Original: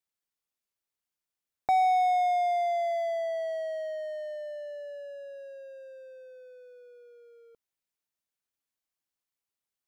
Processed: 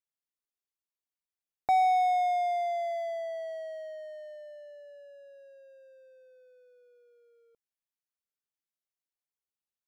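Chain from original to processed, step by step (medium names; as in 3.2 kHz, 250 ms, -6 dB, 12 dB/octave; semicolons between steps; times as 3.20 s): upward expansion 1.5:1, over -40 dBFS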